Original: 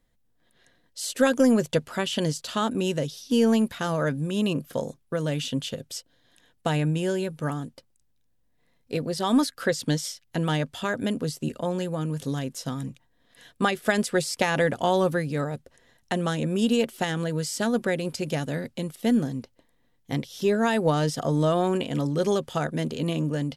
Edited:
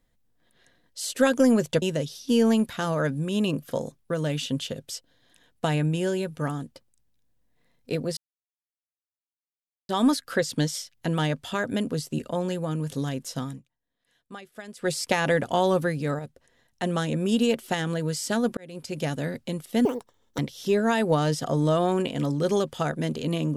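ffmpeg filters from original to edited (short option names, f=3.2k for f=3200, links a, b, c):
-filter_complex "[0:a]asplit=10[a][b][c][d][e][f][g][h][i][j];[a]atrim=end=1.822[k];[b]atrim=start=2.838:end=9.19,asetpts=PTS-STARTPTS,afade=t=out:st=6.348:d=0.004:c=hsin,apad=pad_dur=1.72[l];[c]atrim=start=9.19:end=12.92,asetpts=PTS-STARTPTS,afade=t=in:d=0.004:c=hsin,afade=t=out:st=3.55:d=0.18:silence=0.125893[m];[d]atrim=start=12.92:end=14.05,asetpts=PTS-STARTPTS,volume=-18dB[n];[e]atrim=start=14.05:end=15.492,asetpts=PTS-STARTPTS,afade=t=in:d=0.18:silence=0.125893[o];[f]atrim=start=15.488:end=16.132,asetpts=PTS-STARTPTS,volume=-4.5dB[p];[g]atrim=start=16.128:end=17.87,asetpts=PTS-STARTPTS,afade=t=out:st=1.738:d=0.004:c=hsin[q];[h]atrim=start=17.87:end=19.154,asetpts=PTS-STARTPTS,afade=t=in:d=0.51[r];[i]atrim=start=19.15:end=20.14,asetpts=PTS-STARTPTS,asetrate=81585,aresample=44100,atrim=end_sample=23599,asetpts=PTS-STARTPTS[s];[j]atrim=start=20.136[t];[l][m][n][o]concat=n=4:v=0:a=1[u];[k][u]acrossfade=d=0.004:c1=hsin:c2=hsin[v];[v][p]acrossfade=d=0.004:c1=hsin:c2=hsin[w];[q][r]concat=n=2:v=0:a=1[x];[w][x]acrossfade=d=0.004:c1=hsin:c2=hsin[y];[y][s]acrossfade=d=0.004:c1=hsin:c2=hsin[z];[z][t]acrossfade=d=0.004:c1=hsin:c2=hsin"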